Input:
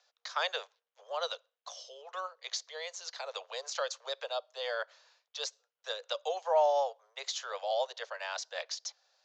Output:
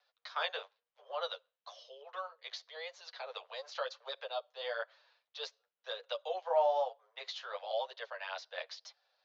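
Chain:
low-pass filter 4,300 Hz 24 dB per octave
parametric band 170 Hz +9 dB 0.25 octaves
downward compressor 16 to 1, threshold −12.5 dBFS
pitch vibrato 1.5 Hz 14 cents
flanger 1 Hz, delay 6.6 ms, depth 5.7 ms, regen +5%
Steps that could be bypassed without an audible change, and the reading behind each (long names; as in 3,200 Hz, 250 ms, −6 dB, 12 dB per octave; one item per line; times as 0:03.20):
parametric band 170 Hz: nothing at its input below 380 Hz
downward compressor, threshold −12.5 dBFS: peak of its input −17.5 dBFS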